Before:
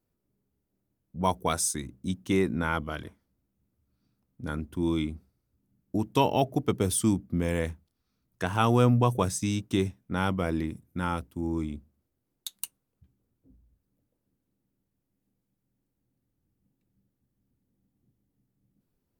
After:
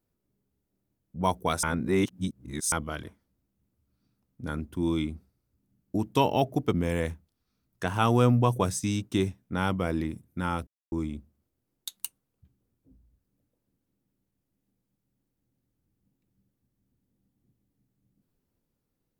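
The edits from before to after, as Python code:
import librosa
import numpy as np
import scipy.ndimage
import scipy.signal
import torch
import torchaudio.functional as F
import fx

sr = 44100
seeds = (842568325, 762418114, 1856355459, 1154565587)

y = fx.edit(x, sr, fx.reverse_span(start_s=1.63, length_s=1.09),
    fx.cut(start_s=6.73, length_s=0.59),
    fx.silence(start_s=11.26, length_s=0.25), tone=tone)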